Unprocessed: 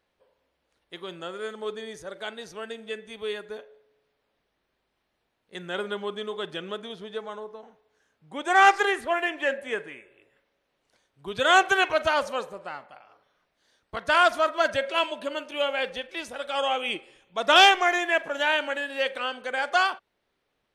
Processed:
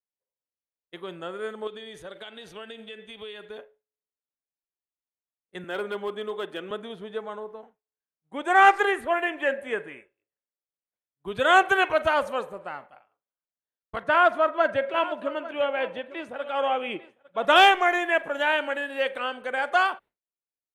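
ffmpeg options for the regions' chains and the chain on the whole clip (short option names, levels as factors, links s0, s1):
-filter_complex "[0:a]asettb=1/sr,asplit=3[s0][s1][s2];[s0]atrim=end=1.674[s3];[s1]atrim=start=1.67:end=3.58,asetpts=PTS-STARTPTS,afade=t=in:d=0.004:c=qsin,afade=t=out:st=1.906:d=0.004:c=qsin,equalizer=f=3300:w=1.5:g=12,acompressor=threshold=0.0158:ratio=5:attack=3.2:release=140:knee=1:detection=peak[s4];[s2]atrim=start=3.576[s5];[s3][s4]acrossfade=d=0.004:c1=hsin:c2=qsin[s6];[s6][s5]acrossfade=d=0.004:c1=qsin:c2=hsin,asettb=1/sr,asplit=3[s7][s8][s9];[s7]atrim=end=5.644[s10];[s8]atrim=start=5.64:end=6.71,asetpts=PTS-STARTPTS,afade=t=in:d=0.004:c=qsin,afade=t=out:st=1.066:d=0.004:c=qsin,highpass=f=210:w=0.5412,highpass=f=210:w=1.3066,asoftclip=type=hard:threshold=0.0596[s11];[s9]atrim=start=6.706[s12];[s10][s11]acrossfade=d=0.004:c1=hsin:c2=qsin[s13];[s13][s12]acrossfade=d=0.004:c1=qsin:c2=hsin,asettb=1/sr,asplit=3[s14][s15][s16];[s14]atrim=end=14.034[s17];[s15]atrim=start=14.03:end=17.45,asetpts=PTS-STARTPTS,afade=t=in:d=0.004:c=qsin,afade=t=out:st=3.416:d=0.004:c=qsin,highpass=f=100:w=0.5412,highpass=f=100:w=1.3066,aemphasis=mode=reproduction:type=75fm,aecho=1:1:849:0.15,atrim=end_sample=150822[s18];[s16]atrim=start=17.446[s19];[s17][s18]acrossfade=d=0.004:c1=hsin:c2=qsin[s20];[s20][s19]acrossfade=d=0.004:c1=qsin:c2=hsin,agate=range=0.0224:threshold=0.00794:ratio=3:detection=peak,equalizer=f=5300:t=o:w=1.1:g=-13,volume=1.19"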